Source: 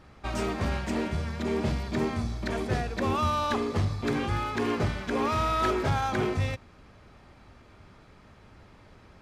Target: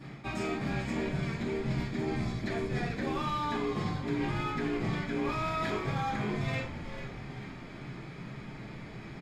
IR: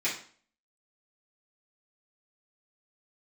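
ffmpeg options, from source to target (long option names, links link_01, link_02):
-filter_complex "[0:a]equalizer=frequency=140:width=1.1:gain=10.5[link_01];[1:a]atrim=start_sample=2205,afade=type=out:start_time=0.19:duration=0.01,atrim=end_sample=8820[link_02];[link_01][link_02]afir=irnorm=-1:irlink=0,areverse,acompressor=threshold=-31dB:ratio=6,areverse,bandreject=frequency=5900:width=11,asplit=7[link_03][link_04][link_05][link_06][link_07][link_08][link_09];[link_04]adelay=444,afreqshift=-130,volume=-10dB[link_10];[link_05]adelay=888,afreqshift=-260,volume=-15.7dB[link_11];[link_06]adelay=1332,afreqshift=-390,volume=-21.4dB[link_12];[link_07]adelay=1776,afreqshift=-520,volume=-27dB[link_13];[link_08]adelay=2220,afreqshift=-650,volume=-32.7dB[link_14];[link_09]adelay=2664,afreqshift=-780,volume=-38.4dB[link_15];[link_03][link_10][link_11][link_12][link_13][link_14][link_15]amix=inputs=7:normalize=0"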